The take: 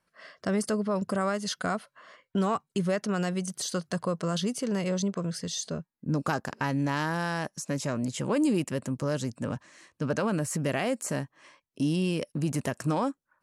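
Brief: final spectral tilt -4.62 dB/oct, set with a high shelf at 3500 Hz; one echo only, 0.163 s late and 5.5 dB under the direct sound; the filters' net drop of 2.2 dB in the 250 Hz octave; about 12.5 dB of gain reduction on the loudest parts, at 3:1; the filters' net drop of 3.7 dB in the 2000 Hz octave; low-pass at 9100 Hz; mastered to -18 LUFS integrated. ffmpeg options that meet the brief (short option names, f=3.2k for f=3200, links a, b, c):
-af "lowpass=9.1k,equalizer=f=250:t=o:g=-3,equalizer=f=2k:t=o:g=-6,highshelf=f=3.5k:g=3.5,acompressor=threshold=-42dB:ratio=3,aecho=1:1:163:0.531,volume=23.5dB"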